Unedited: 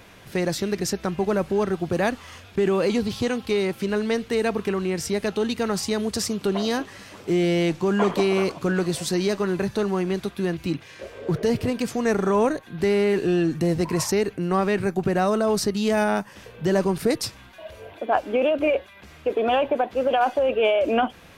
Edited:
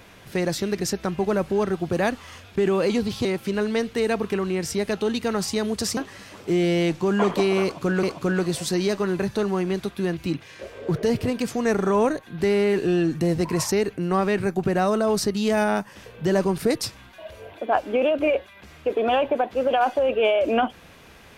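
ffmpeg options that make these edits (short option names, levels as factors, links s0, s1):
-filter_complex "[0:a]asplit=4[s0][s1][s2][s3];[s0]atrim=end=3.252[s4];[s1]atrim=start=3.598:end=6.322[s5];[s2]atrim=start=6.768:end=8.832[s6];[s3]atrim=start=8.428[s7];[s4][s5]acrossfade=d=0.004:c1=hsin:c2=hsin[s8];[s8][s6]acrossfade=d=0.004:c1=hsin:c2=hsin[s9];[s9][s7]acrossfade=d=0.004:c1=hsin:c2=hsin"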